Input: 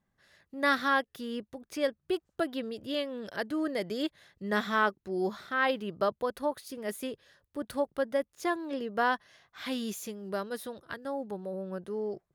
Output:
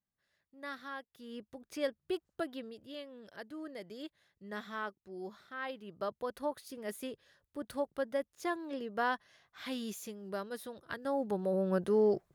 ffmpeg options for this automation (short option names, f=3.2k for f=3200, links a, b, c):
-af "volume=15dB,afade=t=in:st=1.11:d=0.47:silence=0.251189,afade=t=out:st=2.26:d=0.63:silence=0.398107,afade=t=in:st=5.81:d=0.6:silence=0.398107,afade=t=in:st=10.74:d=1.05:silence=0.251189"